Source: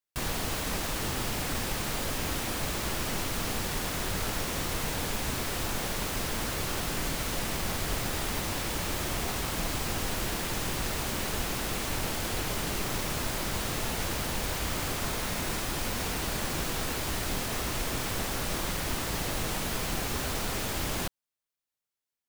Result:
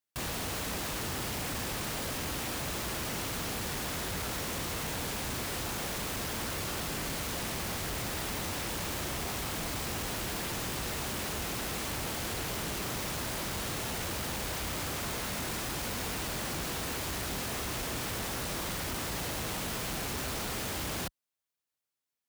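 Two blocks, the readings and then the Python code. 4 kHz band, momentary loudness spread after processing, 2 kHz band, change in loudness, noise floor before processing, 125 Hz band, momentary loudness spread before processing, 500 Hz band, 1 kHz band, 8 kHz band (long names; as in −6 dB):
−2.5 dB, 0 LU, −3.0 dB, −3.0 dB, below −85 dBFS, −3.5 dB, 0 LU, −3.0 dB, −3.0 dB, −2.5 dB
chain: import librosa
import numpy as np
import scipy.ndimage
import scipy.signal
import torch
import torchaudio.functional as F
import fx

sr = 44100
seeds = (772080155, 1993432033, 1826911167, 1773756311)

y = scipy.signal.sosfilt(scipy.signal.butter(2, 48.0, 'highpass', fs=sr, output='sos'), x)
y = np.clip(y, -10.0 ** (-32.5 / 20.0), 10.0 ** (-32.5 / 20.0))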